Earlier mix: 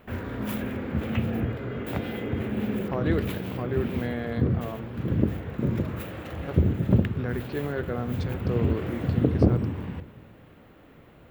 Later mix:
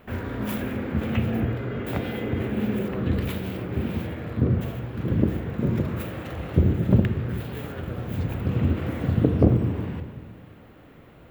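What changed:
speech -10.0 dB; background: send +9.5 dB

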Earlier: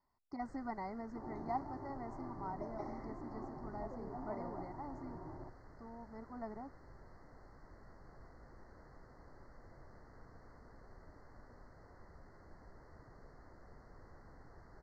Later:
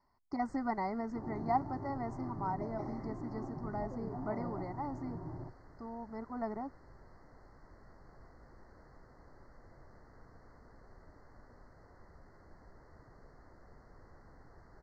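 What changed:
speech +7.5 dB; second sound: add bell 130 Hz +10 dB 2.1 oct

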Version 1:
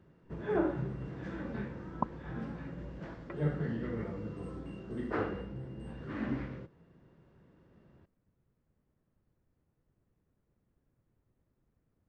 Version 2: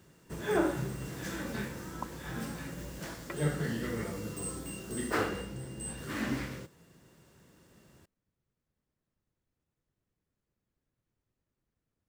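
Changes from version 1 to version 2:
speech -10.0 dB; master: remove tape spacing loss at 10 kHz 41 dB

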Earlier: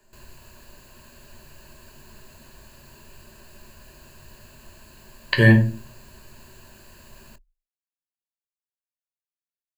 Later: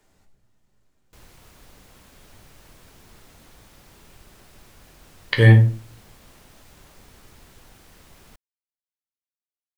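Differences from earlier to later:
background: entry +1.00 s; master: remove ripple EQ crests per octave 1.4, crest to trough 12 dB

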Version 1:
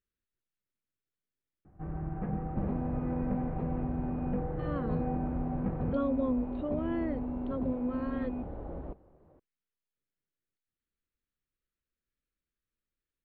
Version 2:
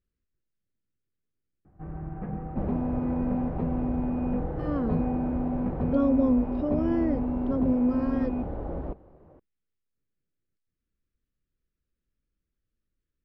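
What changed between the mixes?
speech: add low shelf 440 Hz +12 dB; second sound +7.0 dB; master: remove brick-wall FIR low-pass 4500 Hz

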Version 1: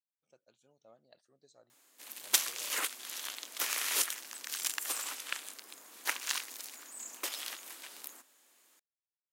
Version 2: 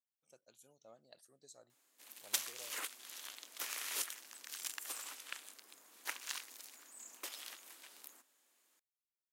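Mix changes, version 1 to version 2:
speech: remove air absorption 130 m; background -8.5 dB

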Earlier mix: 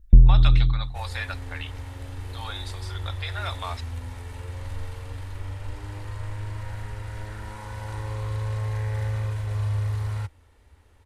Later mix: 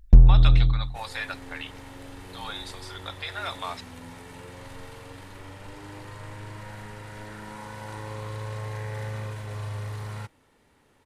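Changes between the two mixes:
first sound: remove running mean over 54 samples; second sound: add resonant low shelf 110 Hz -12 dB, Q 3

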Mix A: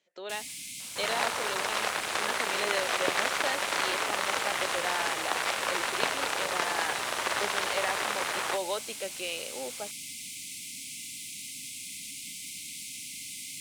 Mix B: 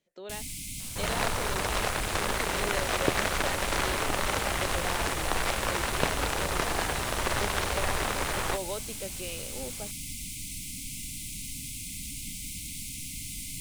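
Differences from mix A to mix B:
speech -5.5 dB; master: remove weighting filter A

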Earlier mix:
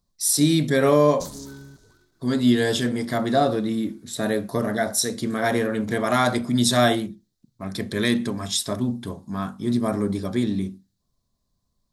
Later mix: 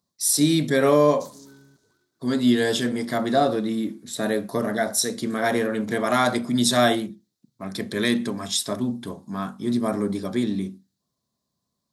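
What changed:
background -8.0 dB; master: add HPF 150 Hz 12 dB/oct

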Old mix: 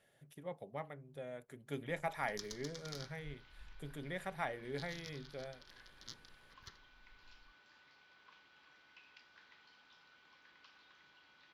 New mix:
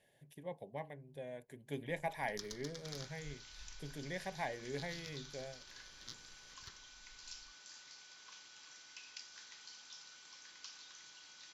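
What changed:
speech: add Butterworth band-stop 1300 Hz, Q 2.7; second sound: remove air absorption 420 m

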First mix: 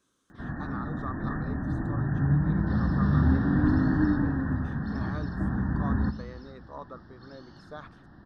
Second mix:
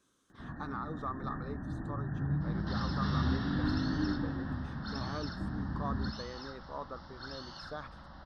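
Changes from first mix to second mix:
first sound -9.0 dB; second sound +11.5 dB

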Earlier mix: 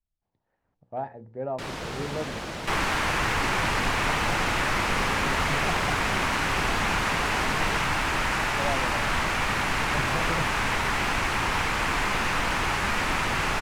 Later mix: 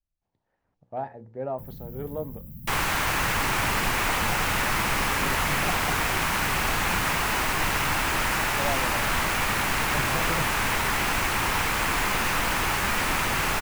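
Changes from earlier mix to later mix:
first sound: add inverse Chebyshev band-stop 400–8700 Hz, stop band 40 dB; master: remove air absorption 55 m

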